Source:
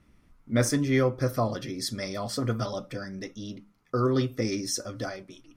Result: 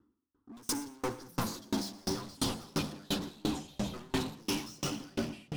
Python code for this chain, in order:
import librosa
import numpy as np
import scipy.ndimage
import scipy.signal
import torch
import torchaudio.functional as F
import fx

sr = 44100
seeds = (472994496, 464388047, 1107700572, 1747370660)

p1 = fx.env_lowpass(x, sr, base_hz=1400.0, full_db=-23.5)
p2 = scipy.signal.sosfilt(scipy.signal.butter(2, 190.0, 'highpass', fs=sr, output='sos'), p1)
p3 = fx.band_shelf(p2, sr, hz=930.0, db=-9.5, octaves=2.7)
p4 = fx.leveller(p3, sr, passes=2)
p5 = fx.rider(p4, sr, range_db=10, speed_s=0.5)
p6 = p4 + (p5 * librosa.db_to_amplitude(-1.0))
p7 = np.clip(p6, -10.0 ** (-24.5 / 20.0), 10.0 ** (-24.5 / 20.0))
p8 = fx.fixed_phaser(p7, sr, hz=630.0, stages=6)
p9 = 10.0 ** (-34.5 / 20.0) * np.tanh(p8 / 10.0 ** (-34.5 / 20.0))
p10 = p9 + fx.echo_feedback(p9, sr, ms=120, feedback_pct=57, wet_db=-8, dry=0)
p11 = fx.echo_pitch(p10, sr, ms=625, semitones=-5, count=2, db_per_echo=-3.0)
p12 = fx.tremolo_decay(p11, sr, direction='decaying', hz=2.9, depth_db=32)
y = p12 * librosa.db_to_amplitude(7.0)